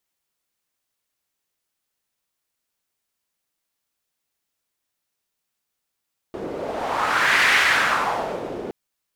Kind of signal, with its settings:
wind from filtered noise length 2.37 s, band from 390 Hz, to 2,000 Hz, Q 2.3, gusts 1, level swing 14 dB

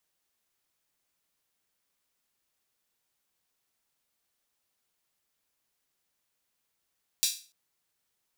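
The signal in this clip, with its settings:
open synth hi-hat length 0.29 s, high-pass 4,100 Hz, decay 0.36 s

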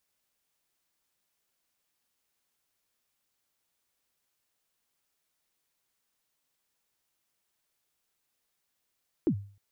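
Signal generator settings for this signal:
synth kick length 0.31 s, from 380 Hz, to 100 Hz, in 78 ms, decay 0.43 s, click off, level −19 dB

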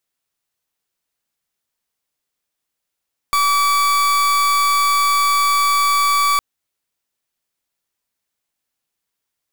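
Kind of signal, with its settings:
pulse wave 1,150 Hz, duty 39% −15.5 dBFS 3.06 s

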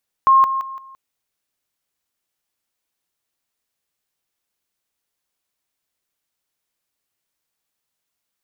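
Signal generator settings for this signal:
level staircase 1,070 Hz −8.5 dBFS, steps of −10 dB, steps 4, 0.17 s 0.00 s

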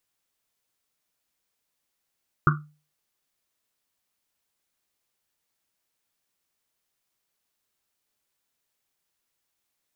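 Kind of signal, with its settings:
drum after Risset, pitch 150 Hz, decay 0.36 s, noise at 1,300 Hz, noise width 320 Hz, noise 45%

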